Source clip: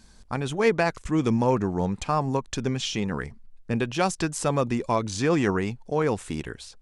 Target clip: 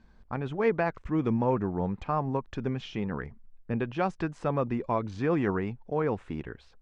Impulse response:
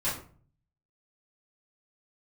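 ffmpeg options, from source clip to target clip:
-af "lowpass=2000,volume=0.631"

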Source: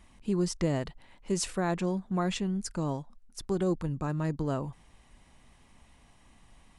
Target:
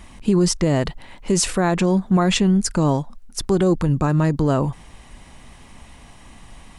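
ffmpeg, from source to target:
-af "alimiter=level_in=14.1:limit=0.891:release=50:level=0:latency=1,volume=0.398"

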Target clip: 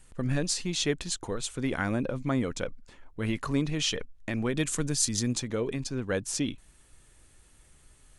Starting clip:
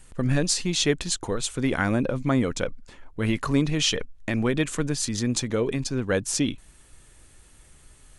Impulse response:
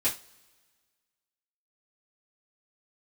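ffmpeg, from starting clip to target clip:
-filter_complex "[0:a]asettb=1/sr,asplit=3[s0][s1][s2];[s0]atrim=end=4.574[s3];[s1]atrim=start=4.57:end=5.33,asetpts=PTS-STARTPTS,afade=t=in:d=0.004:c=qsin,afade=t=out:st=0.756:d=0.004:c=qsin,bass=f=250:g=3,treble=f=4000:g=9[s4];[s2]atrim=start=5.326[s5];[s3][s4]acrossfade=d=0.004:c1=hsin:c2=qsin[s6];[s6][s5]acrossfade=d=0.004:c1=qsin:c2=hsin,volume=0.531"

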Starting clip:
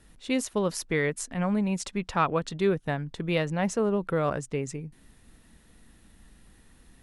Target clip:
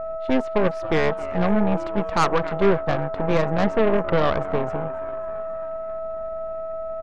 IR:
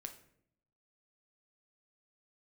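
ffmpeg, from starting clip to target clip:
-filter_complex "[0:a]asplit=2[s0][s1];[s1]asplit=6[s2][s3][s4][s5][s6][s7];[s2]adelay=271,afreqshift=130,volume=0.141[s8];[s3]adelay=542,afreqshift=260,volume=0.0891[s9];[s4]adelay=813,afreqshift=390,volume=0.0562[s10];[s5]adelay=1084,afreqshift=520,volume=0.0355[s11];[s6]adelay=1355,afreqshift=650,volume=0.0221[s12];[s7]adelay=1626,afreqshift=780,volume=0.014[s13];[s8][s9][s10][s11][s12][s13]amix=inputs=6:normalize=0[s14];[s0][s14]amix=inputs=2:normalize=0,aeval=exprs='val(0)+0.0251*sin(2*PI*650*n/s)':c=same,lowpass=1600,aeval=exprs='0.224*(cos(1*acos(clip(val(0)/0.224,-1,1)))-cos(1*PI/2))+0.0447*(cos(6*acos(clip(val(0)/0.224,-1,1)))-cos(6*PI/2))+0.01*(cos(7*acos(clip(val(0)/0.224,-1,1)))-cos(7*PI/2))':c=same,asoftclip=type=tanh:threshold=0.158,volume=2.37"

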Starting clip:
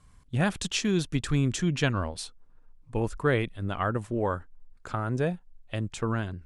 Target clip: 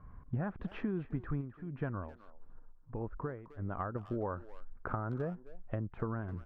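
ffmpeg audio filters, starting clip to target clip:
-filter_complex "[0:a]lowpass=f=1500:w=0.5412,lowpass=f=1500:w=1.3066,acompressor=threshold=0.0112:ratio=6,asplit=3[s0][s1][s2];[s0]afade=t=out:st=1.4:d=0.02[s3];[s1]tremolo=f=1.6:d=0.75,afade=t=in:st=1.4:d=0.02,afade=t=out:st=3.94:d=0.02[s4];[s2]afade=t=in:st=3.94:d=0.02[s5];[s3][s4][s5]amix=inputs=3:normalize=0,asplit=2[s6][s7];[s7]adelay=260,highpass=300,lowpass=3400,asoftclip=type=hard:threshold=0.0106,volume=0.178[s8];[s6][s8]amix=inputs=2:normalize=0,volume=1.78"

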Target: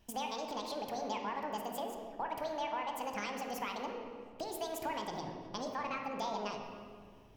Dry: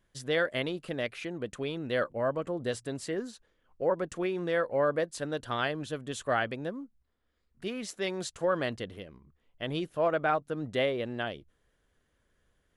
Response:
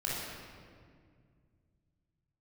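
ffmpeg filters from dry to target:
-filter_complex "[0:a]acompressor=threshold=0.00708:ratio=6,asplit=2[s0][s1];[1:a]atrim=start_sample=2205,asetrate=26901,aresample=44100,highshelf=f=3400:g=-11.5[s2];[s1][s2]afir=irnorm=-1:irlink=0,volume=0.398[s3];[s0][s3]amix=inputs=2:normalize=0,asetrate=76440,aresample=44100,volume=1.26"

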